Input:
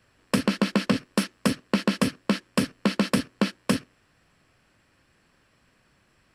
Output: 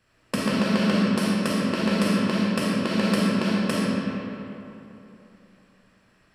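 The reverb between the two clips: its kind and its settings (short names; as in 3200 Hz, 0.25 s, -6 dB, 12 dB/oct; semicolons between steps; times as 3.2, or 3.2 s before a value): digital reverb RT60 3.1 s, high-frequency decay 0.6×, pre-delay 5 ms, DRR -6 dB; gain -4.5 dB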